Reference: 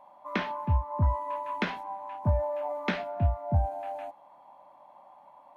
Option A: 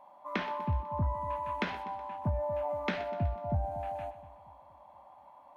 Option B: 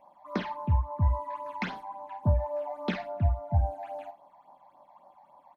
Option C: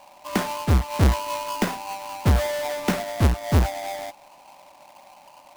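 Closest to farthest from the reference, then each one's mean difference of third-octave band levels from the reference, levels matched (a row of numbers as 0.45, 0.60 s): B, A, C; 2.0, 3.5, 11.0 dB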